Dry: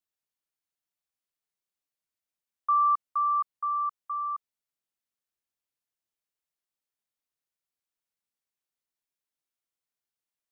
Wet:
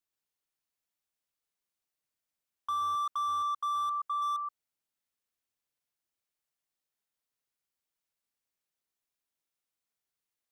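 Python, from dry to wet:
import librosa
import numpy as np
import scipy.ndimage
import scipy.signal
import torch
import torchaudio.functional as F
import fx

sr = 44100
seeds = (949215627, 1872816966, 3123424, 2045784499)

y = x + 10.0 ** (-4.5 / 20.0) * np.pad(x, (int(124 * sr / 1000.0), 0))[:len(x)]
y = fx.slew_limit(y, sr, full_power_hz=37.0)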